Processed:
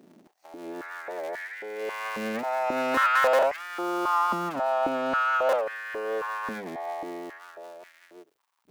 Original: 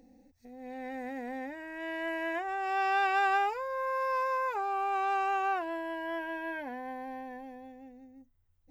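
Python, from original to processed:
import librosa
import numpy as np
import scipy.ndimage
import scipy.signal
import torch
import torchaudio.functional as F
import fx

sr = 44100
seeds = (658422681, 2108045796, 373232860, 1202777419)

y = fx.cycle_switch(x, sr, every=3, mode='inverted')
y = fx.dmg_crackle(y, sr, seeds[0], per_s=150.0, level_db=-59.0)
y = fx.filter_held_highpass(y, sr, hz=3.7, low_hz=220.0, high_hz=1800.0)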